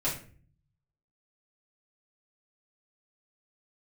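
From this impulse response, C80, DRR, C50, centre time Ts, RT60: 12.0 dB, −9.5 dB, 7.0 dB, 28 ms, 0.45 s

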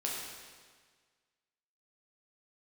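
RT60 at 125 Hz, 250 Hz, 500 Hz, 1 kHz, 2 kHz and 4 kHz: 1.7, 1.6, 1.6, 1.6, 1.6, 1.5 seconds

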